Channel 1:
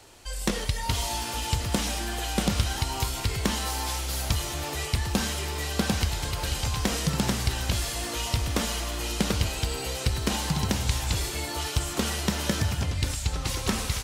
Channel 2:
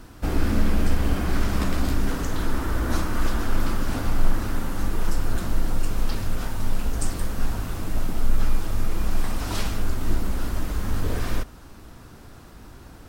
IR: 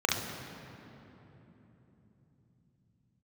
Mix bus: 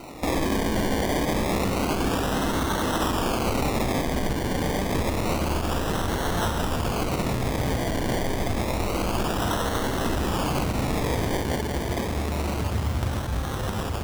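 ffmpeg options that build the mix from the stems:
-filter_complex "[0:a]alimiter=limit=-23.5dB:level=0:latency=1:release=80,volume=1.5dB,asplit=2[a][b];[b]volume=-12dB[c];[1:a]asplit=2[d][e];[e]highpass=f=720:p=1,volume=22dB,asoftclip=type=tanh:threshold=-6dB[f];[d][f]amix=inputs=2:normalize=0,lowpass=f=1.2k:p=1,volume=-6dB,volume=-4.5dB,asplit=2[g][h];[h]volume=-11.5dB[i];[2:a]atrim=start_sample=2205[j];[c][i]amix=inputs=2:normalize=0[k];[k][j]afir=irnorm=-1:irlink=0[l];[a][g][l]amix=inputs=3:normalize=0,acrusher=samples=26:mix=1:aa=0.000001:lfo=1:lforange=15.6:lforate=0.28,alimiter=limit=-17dB:level=0:latency=1:release=114"

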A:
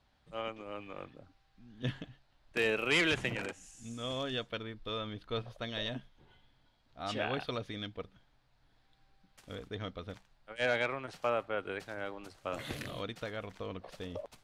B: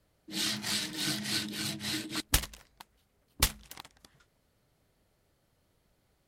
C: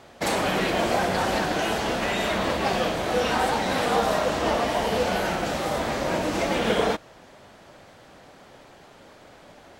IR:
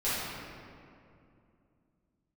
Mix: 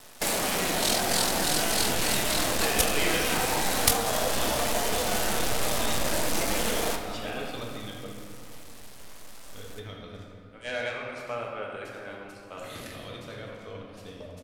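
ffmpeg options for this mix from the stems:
-filter_complex "[0:a]adelay=50,volume=-8dB,asplit=2[a][b];[b]volume=-4.5dB[c];[1:a]tremolo=f=42:d=0.857,adelay=450,volume=3dB[d];[2:a]acrusher=bits=5:dc=4:mix=0:aa=0.000001,asubboost=boost=4:cutoff=51,acompressor=threshold=-24dB:ratio=6,volume=-4dB,asplit=2[e][f];[f]volume=-12dB[g];[3:a]atrim=start_sample=2205[h];[c][g]amix=inputs=2:normalize=0[i];[i][h]afir=irnorm=-1:irlink=0[j];[a][d][e][j]amix=inputs=4:normalize=0,lowpass=11k,aemphasis=mode=production:type=50fm,asoftclip=type=tanh:threshold=-8dB"

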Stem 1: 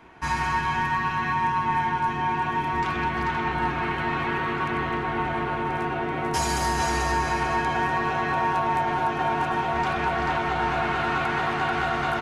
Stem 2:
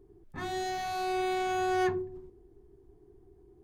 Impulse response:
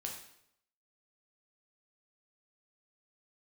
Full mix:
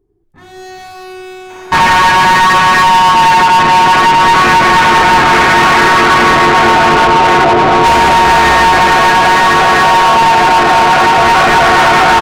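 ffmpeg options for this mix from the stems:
-filter_complex "[0:a]afwtdn=0.0316,asplit=2[a][b];[b]highpass=f=720:p=1,volume=29dB,asoftclip=type=tanh:threshold=-11.5dB[c];[a][c]amix=inputs=2:normalize=0,lowpass=f=4.3k:p=1,volume=-6dB,adelay=1500,volume=2.5dB[d];[1:a]asoftclip=type=hard:threshold=-32.5dB,volume=-5.5dB,asplit=2[e][f];[f]volume=-6.5dB[g];[2:a]atrim=start_sample=2205[h];[g][h]afir=irnorm=-1:irlink=0[i];[d][e][i]amix=inputs=3:normalize=0,dynaudnorm=f=110:g=11:m=11.5dB"

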